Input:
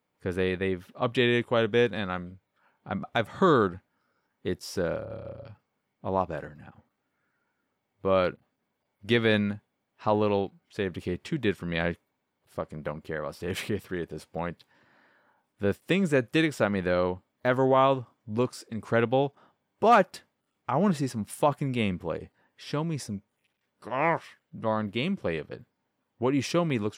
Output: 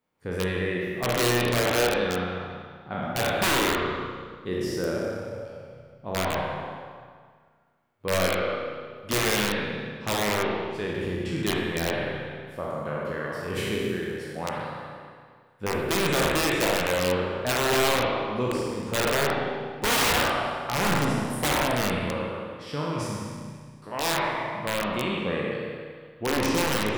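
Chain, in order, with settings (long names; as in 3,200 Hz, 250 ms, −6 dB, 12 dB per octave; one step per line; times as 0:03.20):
peak hold with a decay on every bin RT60 1.63 s
wrap-around overflow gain 15 dB
spring reverb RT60 1.5 s, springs 33/48 ms, chirp 50 ms, DRR 0 dB
level −4 dB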